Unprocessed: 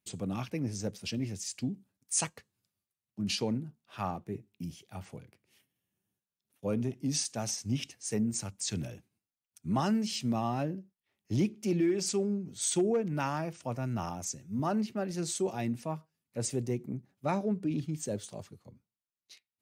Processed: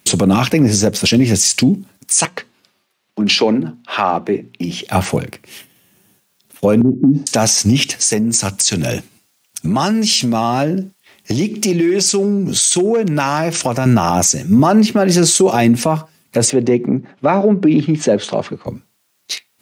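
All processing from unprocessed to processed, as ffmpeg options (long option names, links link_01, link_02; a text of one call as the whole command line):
ffmpeg -i in.wav -filter_complex "[0:a]asettb=1/sr,asplit=3[link_01][link_02][link_03];[link_01]atrim=end=2.254[link_04];[link_02]atrim=start=2.25:end=4.83,asetpts=PTS-STARTPTS,afade=type=in:duration=0.004:curve=qsin,afade=type=out:start_time=2.576:duration=0.004:curve=qsin,acrossover=split=220 4800:gain=0.178 1 0.158[link_05][link_06][link_07];[link_05][link_06][link_07]amix=inputs=3:normalize=0,bandreject=frequency=60:width_type=h:width=6,bandreject=frequency=120:width_type=h:width=6,bandreject=frequency=180:width_type=h:width=6,bandreject=frequency=240:width_type=h:width=6,acompressor=threshold=-51dB:ratio=1.5:attack=3.2:release=140:knee=1:detection=peak[link_08];[link_03]atrim=start=4.826[link_09];[link_04][link_08]acrossfade=duration=0.004:curve1=hsin:curve2=qsin[link_10];[link_10][link_09]acrossfade=duration=0.004:curve1=qsin:curve2=hsin,asettb=1/sr,asplit=3[link_11][link_12][link_13];[link_11]atrim=end=6.814[link_14];[link_12]atrim=start=6.81:end=7.27,asetpts=PTS-STARTPTS,afade=type=in:duration=0.004:curve=qsin,afade=type=out:start_time=0.456:duration=0.004:curve=qsin,lowpass=frequency=280:width_type=q:width=2.3,acompressor=threshold=-31dB:ratio=6:attack=3.2:release=140:knee=1:detection=peak[link_15];[link_13]atrim=start=7.266[link_16];[link_14][link_15]acrossfade=duration=0.004:curve1=hsin:curve2=qsin[link_17];[link_17][link_16]acrossfade=duration=0.004:curve1=qsin:curve2=hsin,asettb=1/sr,asplit=3[link_18][link_19][link_20];[link_18]atrim=end=7.944[link_21];[link_19]atrim=start=7.94:end=13.86,asetpts=PTS-STARTPTS,afade=type=in:duration=0.004:curve=qsin,afade=type=out:start_time=5.916:duration=0.004:curve=qsin,equalizer=frequency=5800:width=0.44:gain=4,acompressor=threshold=-42dB:ratio=8:attack=3.2:release=140:knee=1:detection=peak[link_22];[link_20]atrim=start=13.856[link_23];[link_21][link_22]acrossfade=duration=0.004:curve1=hsin:curve2=qsin[link_24];[link_24][link_23]acrossfade=duration=0.004:curve1=qsin:curve2=hsin,asettb=1/sr,asplit=3[link_25][link_26][link_27];[link_25]atrim=end=16.504[link_28];[link_26]atrim=start=16.5:end=18.67,asetpts=PTS-STARTPTS,afade=type=in:duration=0.004:curve=qsin,afade=type=out:start_time=2.166:duration=0.004:curve=qsin,highpass=170,lowpass=2900,acompressor=threshold=-49dB:ratio=1.5:attack=3.2:release=140:knee=1:detection=peak[link_29];[link_27]atrim=start=18.666[link_30];[link_28][link_29]acrossfade=duration=0.004:curve1=hsin:curve2=qsin[link_31];[link_31][link_30]acrossfade=duration=0.004:curve1=qsin:curve2=hsin,highpass=frequency=190:poles=1,acompressor=threshold=-37dB:ratio=6,alimiter=level_in=34dB:limit=-1dB:release=50:level=0:latency=1,volume=-2.5dB" out.wav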